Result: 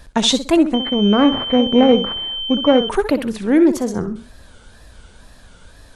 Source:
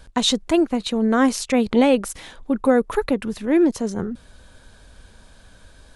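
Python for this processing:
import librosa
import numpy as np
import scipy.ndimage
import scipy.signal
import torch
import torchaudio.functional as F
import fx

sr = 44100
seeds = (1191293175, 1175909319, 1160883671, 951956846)

y = fx.echo_feedback(x, sr, ms=64, feedback_pct=28, wet_db=-11.0)
y = fx.wow_flutter(y, sr, seeds[0], rate_hz=2.1, depth_cents=140.0)
y = fx.pwm(y, sr, carrier_hz=3100.0, at=(0.74, 2.89))
y = y * librosa.db_to_amplitude(3.5)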